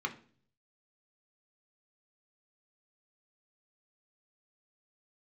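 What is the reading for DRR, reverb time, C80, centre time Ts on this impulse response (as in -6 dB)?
2.5 dB, 0.45 s, 19.5 dB, 9 ms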